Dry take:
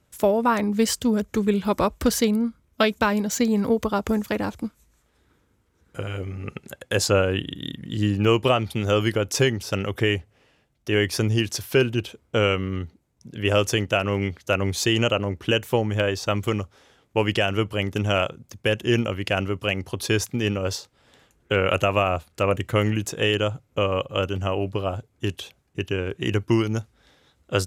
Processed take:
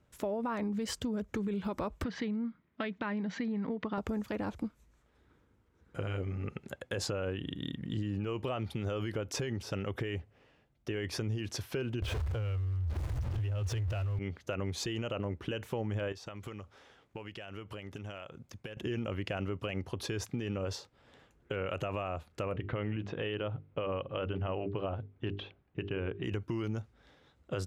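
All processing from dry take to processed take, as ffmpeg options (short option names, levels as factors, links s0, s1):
-filter_complex "[0:a]asettb=1/sr,asplit=3[s0][s1][s2];[s0]atrim=end=2.044[s3];[s1]atrim=start=2.04:end=3.98,asetpts=PTS-STARTPTS,afade=t=in:d=0.004:c=qsin,afade=t=out:st=1.936:d=0.004:c=qsin,highpass=170,equalizer=f=180:t=q:w=4:g=8,equalizer=f=520:t=q:w=4:g=-6,equalizer=f=1900:t=q:w=4:g=8,lowpass=f=4200:w=0.5412,lowpass=f=4200:w=1.3066,acompressor=threshold=0.0355:ratio=2.5:attack=3.2:release=140:knee=1:detection=peak[s4];[s2]atrim=start=3.976[s5];[s3][s4]acrossfade=d=0.004:c1=hsin:c2=qsin[s6];[s6][s5]acrossfade=d=0.004:c1=qsin:c2=hsin,asettb=1/sr,asplit=3[s7][s8][s9];[s7]atrim=end=12.024[s10];[s8]atrim=start=12.02:end=14.19,asetpts=PTS-STARTPTS,afade=t=in:d=0.004:c=qsin,afade=t=out:st=2.166:d=0.004:c=qsin,aeval=exprs='val(0)+0.5*0.0631*sgn(val(0))':c=same,lowshelf=f=130:t=q:w=3:g=12.5,acrusher=bits=8:mix=0:aa=0.5[s11];[s9]atrim=start=14.186[s12];[s10][s11]acrossfade=d=0.004:c1=hsin:c2=qsin[s13];[s13][s12]acrossfade=d=0.004:c1=qsin:c2=hsin,asettb=1/sr,asplit=3[s14][s15][s16];[s14]atrim=end=16.124[s17];[s15]atrim=start=16.12:end=18.77,asetpts=PTS-STARTPTS,afade=t=in:d=0.004:c=qsin,afade=t=out:st=2.646:d=0.004:c=qsin,tiltshelf=f=650:g=-3,acompressor=threshold=0.0178:ratio=20:attack=3.2:release=140:knee=1:detection=peak[s18];[s16]atrim=start=18.766[s19];[s17][s18]acrossfade=d=0.004:c1=hsin:c2=qsin[s20];[s20][s19]acrossfade=d=0.004:c1=qsin:c2=hsin,asettb=1/sr,asplit=3[s21][s22][s23];[s21]atrim=end=22.524[s24];[s22]atrim=start=22.52:end=26.24,asetpts=PTS-STARTPTS,afade=t=in:d=0.004:c=qsin,afade=t=out:st=3.716:d=0.004:c=qsin,lowpass=f=3700:w=0.5412,lowpass=f=3700:w=1.3066,bandreject=f=50:t=h:w=6,bandreject=f=100:t=h:w=6,bandreject=f=150:t=h:w=6,bandreject=f=200:t=h:w=6,bandreject=f=250:t=h:w=6,bandreject=f=300:t=h:w=6,bandreject=f=350:t=h:w=6,bandreject=f=400:t=h:w=6,bandreject=f=450:t=h:w=6[s25];[s23]atrim=start=26.236[s26];[s24][s25]acrossfade=d=0.004:c1=hsin:c2=qsin[s27];[s27][s26]acrossfade=d=0.004:c1=qsin:c2=hsin,lowpass=f=2400:p=1,alimiter=limit=0.106:level=0:latency=1:release=55,acompressor=threshold=0.0398:ratio=6,volume=0.708"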